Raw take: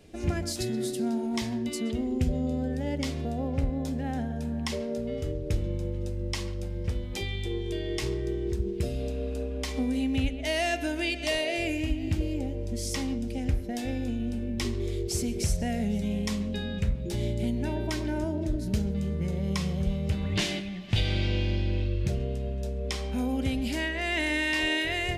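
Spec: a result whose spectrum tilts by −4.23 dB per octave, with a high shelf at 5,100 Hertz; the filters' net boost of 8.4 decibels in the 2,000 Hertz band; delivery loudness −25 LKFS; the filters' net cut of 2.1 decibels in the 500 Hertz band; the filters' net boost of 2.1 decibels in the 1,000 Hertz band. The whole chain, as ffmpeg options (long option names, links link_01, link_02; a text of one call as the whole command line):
ffmpeg -i in.wav -af "equalizer=frequency=500:width_type=o:gain=-4.5,equalizer=frequency=1000:width_type=o:gain=3.5,equalizer=frequency=2000:width_type=o:gain=8.5,highshelf=frequency=5100:gain=4,volume=3dB" out.wav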